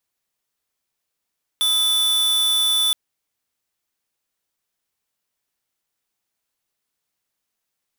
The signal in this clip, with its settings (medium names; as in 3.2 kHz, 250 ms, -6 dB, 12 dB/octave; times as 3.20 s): tone square 3.49 kHz -18.5 dBFS 1.32 s